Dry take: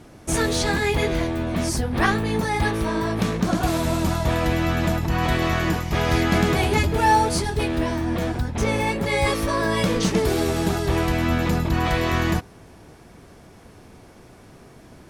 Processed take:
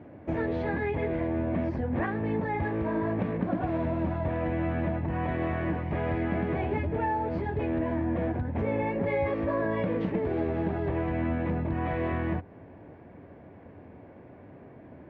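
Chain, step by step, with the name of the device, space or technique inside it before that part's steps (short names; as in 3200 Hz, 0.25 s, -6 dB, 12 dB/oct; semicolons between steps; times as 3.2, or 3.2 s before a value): bass amplifier (compressor, threshold -23 dBFS, peak gain reduction 10 dB; speaker cabinet 86–2100 Hz, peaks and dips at 88 Hz +6 dB, 280 Hz +5 dB, 570 Hz +6 dB, 1300 Hz -8 dB); gain -3 dB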